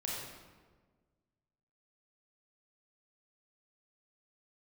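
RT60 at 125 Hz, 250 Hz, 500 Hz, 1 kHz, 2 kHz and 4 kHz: 1.9, 1.8, 1.6, 1.3, 1.1, 0.90 s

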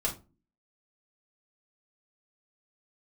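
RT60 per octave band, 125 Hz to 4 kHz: 0.50, 0.55, 0.35, 0.25, 0.20, 0.20 s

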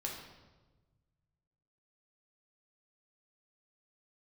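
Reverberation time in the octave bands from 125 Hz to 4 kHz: 2.4, 1.6, 1.4, 1.1, 0.95, 0.90 s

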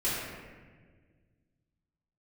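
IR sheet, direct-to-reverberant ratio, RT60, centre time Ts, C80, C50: -12.5 dB, 1.6 s, 0.104 s, 0.5 dB, -1.5 dB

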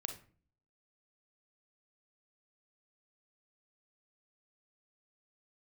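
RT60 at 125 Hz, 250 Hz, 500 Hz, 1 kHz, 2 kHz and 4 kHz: 0.70, 0.65, 0.45, 0.40, 0.40, 0.30 s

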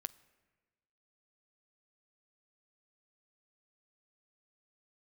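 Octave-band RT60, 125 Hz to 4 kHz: 1.5, 1.4, 1.4, 1.2, 1.3, 0.90 s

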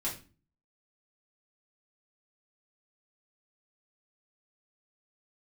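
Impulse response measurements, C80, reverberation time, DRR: 14.0 dB, 0.35 s, -6.5 dB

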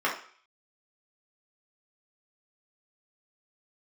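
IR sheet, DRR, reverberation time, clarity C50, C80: -5.0 dB, 0.50 s, 7.0 dB, 12.0 dB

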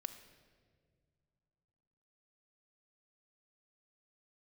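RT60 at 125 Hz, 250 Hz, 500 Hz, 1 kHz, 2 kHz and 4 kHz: 3.1, 2.8, 2.3, 1.5, 1.4, 1.2 s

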